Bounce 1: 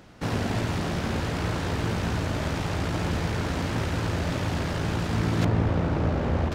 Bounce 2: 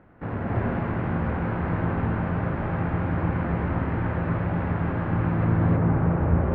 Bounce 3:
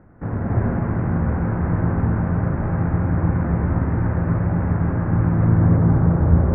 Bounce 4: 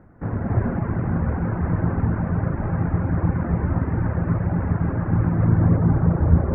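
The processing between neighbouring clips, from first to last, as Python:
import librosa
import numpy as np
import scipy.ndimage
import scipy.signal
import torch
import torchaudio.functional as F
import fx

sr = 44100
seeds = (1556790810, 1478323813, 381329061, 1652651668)

y1 = scipy.signal.sosfilt(scipy.signal.butter(4, 1900.0, 'lowpass', fs=sr, output='sos'), x)
y1 = fx.rev_gated(y1, sr, seeds[0], gate_ms=340, shape='rising', drr_db=-3.5)
y1 = F.gain(torch.from_numpy(y1), -3.5).numpy()
y2 = scipy.signal.sosfilt(scipy.signal.butter(4, 2000.0, 'lowpass', fs=sr, output='sos'), y1)
y2 = fx.low_shelf(y2, sr, hz=270.0, db=8.0)
y3 = fx.dereverb_blind(y2, sr, rt60_s=0.7)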